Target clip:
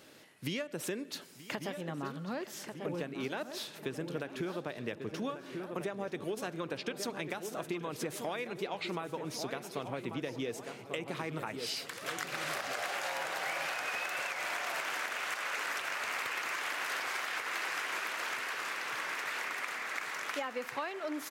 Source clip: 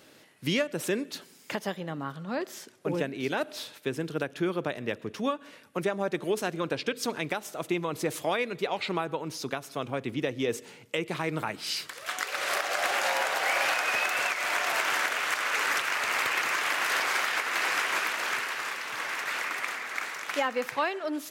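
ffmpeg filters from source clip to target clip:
ffmpeg -i in.wav -filter_complex "[0:a]asplit=2[link_01][link_02];[link_02]adelay=1141,lowpass=frequency=1900:poles=1,volume=-10dB,asplit=2[link_03][link_04];[link_04]adelay=1141,lowpass=frequency=1900:poles=1,volume=0.46,asplit=2[link_05][link_06];[link_06]adelay=1141,lowpass=frequency=1900:poles=1,volume=0.46,asplit=2[link_07][link_08];[link_08]adelay=1141,lowpass=frequency=1900:poles=1,volume=0.46,asplit=2[link_09][link_10];[link_10]adelay=1141,lowpass=frequency=1900:poles=1,volume=0.46[link_11];[link_03][link_05][link_07][link_09][link_11]amix=inputs=5:normalize=0[link_12];[link_01][link_12]amix=inputs=2:normalize=0,acompressor=threshold=-33dB:ratio=4,asplit=2[link_13][link_14];[link_14]aecho=0:1:930|1860|2790|3720:0.141|0.072|0.0367|0.0187[link_15];[link_13][link_15]amix=inputs=2:normalize=0,volume=-1.5dB" out.wav

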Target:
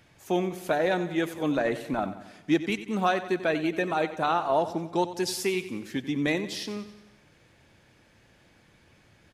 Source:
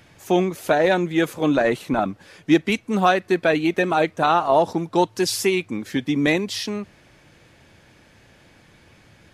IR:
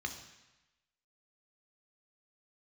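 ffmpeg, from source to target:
-af "aecho=1:1:91|182|273|364|455|546:0.211|0.116|0.0639|0.0352|0.0193|0.0106,volume=-7.5dB"

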